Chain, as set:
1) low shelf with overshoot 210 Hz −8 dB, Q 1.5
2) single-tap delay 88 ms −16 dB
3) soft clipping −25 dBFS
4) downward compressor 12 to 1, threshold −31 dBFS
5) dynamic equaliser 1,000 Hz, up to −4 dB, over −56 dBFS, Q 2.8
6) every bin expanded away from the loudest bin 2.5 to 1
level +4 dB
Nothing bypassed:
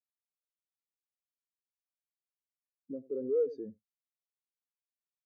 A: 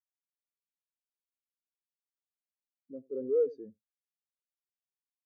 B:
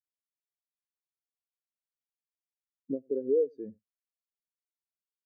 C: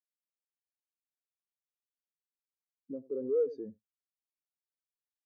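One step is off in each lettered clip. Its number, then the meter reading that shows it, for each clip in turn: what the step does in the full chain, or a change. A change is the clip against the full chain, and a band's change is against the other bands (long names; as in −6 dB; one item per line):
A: 4, average gain reduction 3.0 dB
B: 3, distortion level −6 dB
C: 5, change in integrated loudness +1.0 LU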